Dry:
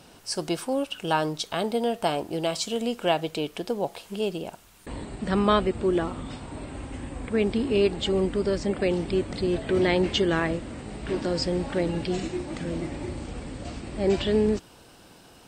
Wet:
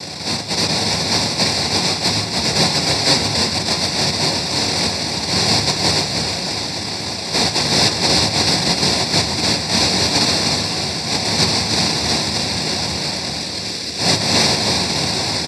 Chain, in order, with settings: switching spikes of -15.5 dBFS; AGC gain up to 8 dB; high shelf 4600 Hz +6 dB; noise vocoder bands 1; soft clip -3.5 dBFS, distortion -24 dB; 2.74–3.36 comb 7.4 ms, depth 79%; 13.39–13.99 fixed phaser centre 350 Hz, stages 4; spectral gate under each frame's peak -25 dB strong; frequency-shifting echo 0.308 s, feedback 60%, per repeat -40 Hz, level -5.5 dB; reverb RT60 0.35 s, pre-delay 3 ms, DRR 10.5 dB; gain -8 dB

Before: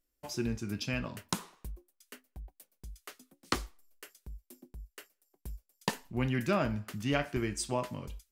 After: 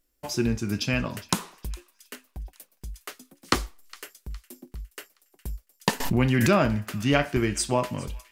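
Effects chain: on a send: thin delay 0.411 s, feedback 43%, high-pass 1600 Hz, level -19 dB; 6–6.69 on the sum: backwards sustainer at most 33 dB/s; gain +8.5 dB

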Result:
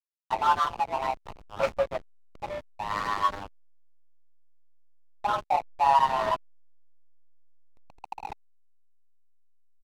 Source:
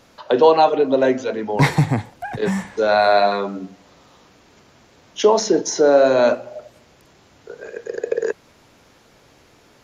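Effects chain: LPF 3300 Hz 24 dB/oct; echo 0.65 s -22.5 dB; chorus voices 6, 0.48 Hz, delay 16 ms, depth 4.4 ms; frequency shift +400 Hz; 5.33–7.8 resonant low shelf 340 Hz -12.5 dB, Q 3; on a send at -18 dB: reverb RT60 1.1 s, pre-delay 43 ms; on the sum: backlash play -15 dBFS; gain -6.5 dB; MP3 192 kbps 44100 Hz

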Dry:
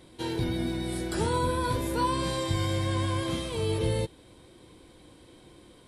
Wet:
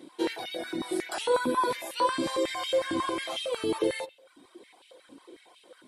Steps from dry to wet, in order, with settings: reverb removal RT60 0.84 s; on a send at -15 dB: reverb RT60 0.45 s, pre-delay 39 ms; on the sum: stepped high-pass 11 Hz 270–2800 Hz

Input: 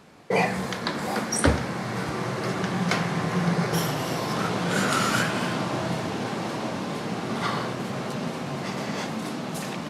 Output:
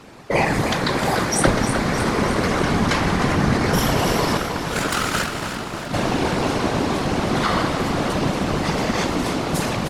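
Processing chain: 4.37–5.94 power-law curve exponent 2; in parallel at -1 dB: negative-ratio compressor -28 dBFS; on the sum: whisperiser; feedback echo 0.308 s, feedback 56%, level -9 dB; gain +2 dB

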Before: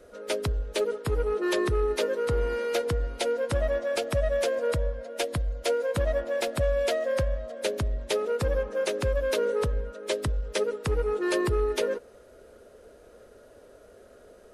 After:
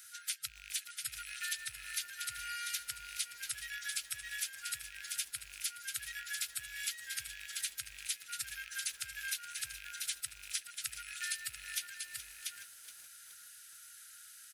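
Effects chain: rattling part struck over -39 dBFS, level -37 dBFS; differentiator; on a send: echo 0.687 s -12.5 dB; on the sum: FFT band-reject 140–1300 Hz; compressor 4:1, threshold -53 dBFS, peak gain reduction 17 dB; lo-fi delay 0.421 s, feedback 55%, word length 11-bit, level -12 dB; gain +14.5 dB

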